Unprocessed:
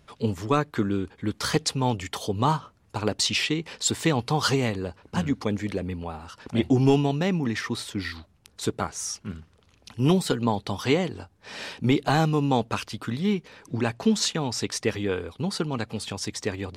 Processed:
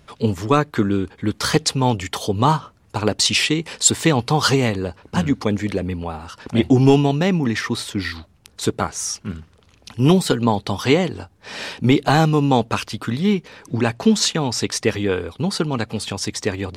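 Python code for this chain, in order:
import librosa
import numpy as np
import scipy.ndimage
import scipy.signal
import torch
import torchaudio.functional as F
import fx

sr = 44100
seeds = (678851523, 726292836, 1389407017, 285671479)

y = fx.peak_eq(x, sr, hz=9200.0, db=7.5, octaves=0.75, at=(3.25, 3.9))
y = y * 10.0 ** (6.5 / 20.0)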